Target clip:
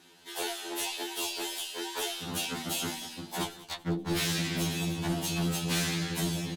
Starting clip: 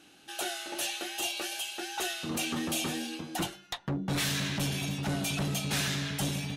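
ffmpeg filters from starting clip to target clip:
-filter_complex "[0:a]aecho=1:1:193|386|579:0.126|0.0529|0.0222,asplit=2[a][b];[b]asetrate=52444,aresample=44100,atempo=0.840896,volume=-1dB[c];[a][c]amix=inputs=2:normalize=0,afftfilt=real='re*2*eq(mod(b,4),0)':imag='im*2*eq(mod(b,4),0)':win_size=2048:overlap=0.75"

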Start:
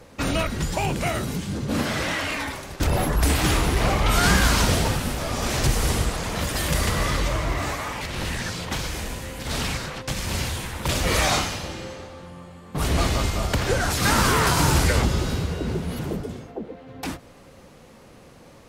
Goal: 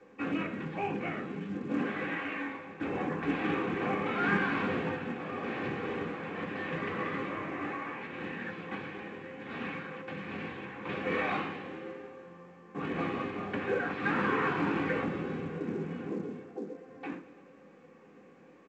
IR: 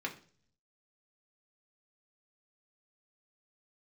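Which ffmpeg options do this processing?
-filter_complex "[0:a]highpass=260,equalizer=f=270:t=q:w=4:g=-4,equalizer=f=440:t=q:w=4:g=-3,equalizer=f=650:t=q:w=4:g=-10,equalizer=f=940:t=q:w=4:g=-8,equalizer=f=1.4k:t=q:w=4:g=-8,equalizer=f=2k:t=q:w=4:g=-8,lowpass=f=2.1k:w=0.5412,lowpass=f=2.1k:w=1.3066,aecho=1:1:112|224|336|448|560|672:0.15|0.0883|0.0521|0.0307|0.0181|0.0107[a];[1:a]atrim=start_sample=2205,atrim=end_sample=4410[b];[a][b]afir=irnorm=-1:irlink=0,volume=-3.5dB" -ar 16000 -c:a pcm_mulaw

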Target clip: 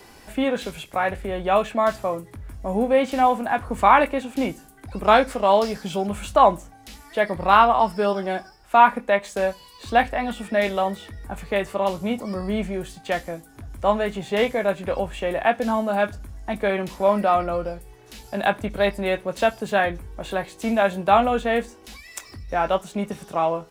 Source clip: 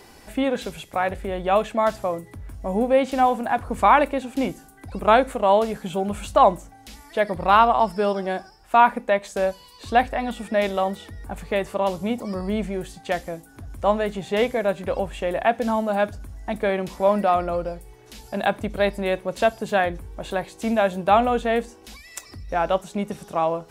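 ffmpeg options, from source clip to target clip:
-filter_complex "[0:a]asettb=1/sr,asplit=3[a][b][c];[a]atrim=end=5.044[d];[b]atrim=start=5.04:end=6.07,asetpts=PTS-STARTPTS,afade=t=in:d=0.004:c=qsin,afade=t=out:st=1.026:d=0.004:c=qsin,equalizer=f=5.1k:t=o:w=0.45:g=13.5[e];[c]atrim=start=6.066[f];[d][e]acrossfade=d=0.004:c1=hsin:c2=qsin[g];[g][f]acrossfade=d=0.004:c1=qsin:c2=hsin,acrossover=split=250|980|3900[h][i][j][k];[j]asplit=2[l][m];[m]adelay=20,volume=-2dB[n];[l][n]amix=inputs=2:normalize=0[o];[k]acrusher=bits=3:mode=log:mix=0:aa=0.000001[p];[h][i][o][p]amix=inputs=4:normalize=0"

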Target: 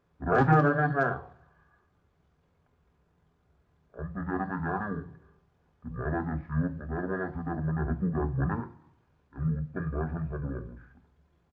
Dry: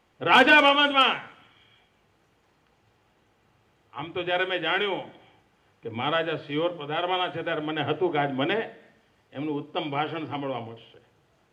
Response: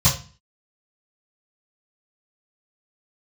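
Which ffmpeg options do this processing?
-filter_complex "[0:a]asetrate=22696,aresample=44100,atempo=1.94306,asplit=2[a][b];[1:a]atrim=start_sample=2205[c];[b][c]afir=irnorm=-1:irlink=0,volume=-27.5dB[d];[a][d]amix=inputs=2:normalize=0,volume=-6.5dB"

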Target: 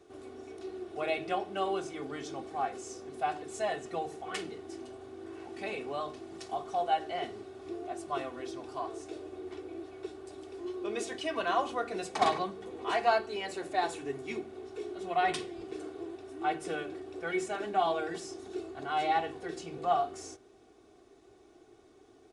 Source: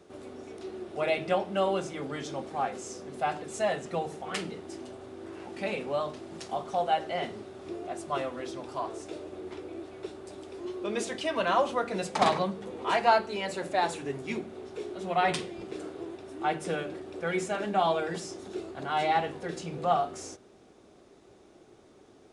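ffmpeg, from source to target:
-af "aecho=1:1:2.7:0.57,volume=-5dB"

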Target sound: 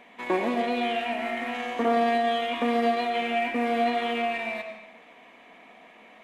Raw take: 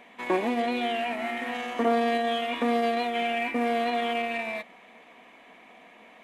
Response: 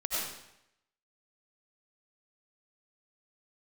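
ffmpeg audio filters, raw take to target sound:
-filter_complex "[0:a]asplit=2[a][b];[1:a]atrim=start_sample=2205,lowpass=7.7k[c];[b][c]afir=irnorm=-1:irlink=0,volume=-9.5dB[d];[a][d]amix=inputs=2:normalize=0,volume=-2.5dB"

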